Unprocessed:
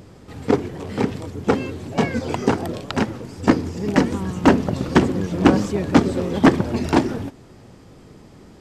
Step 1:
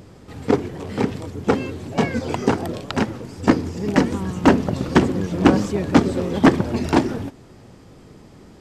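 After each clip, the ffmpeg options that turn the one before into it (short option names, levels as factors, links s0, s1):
-af anull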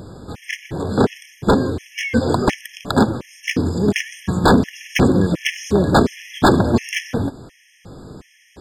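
-af "aeval=exprs='0.237*(abs(mod(val(0)/0.237+3,4)-2)-1)':c=same,afftfilt=real='re*gt(sin(2*PI*1.4*pts/sr)*(1-2*mod(floor(b*sr/1024/1700),2)),0)':imag='im*gt(sin(2*PI*1.4*pts/sr)*(1-2*mod(floor(b*sr/1024/1700),2)),0)':win_size=1024:overlap=0.75,volume=2.51"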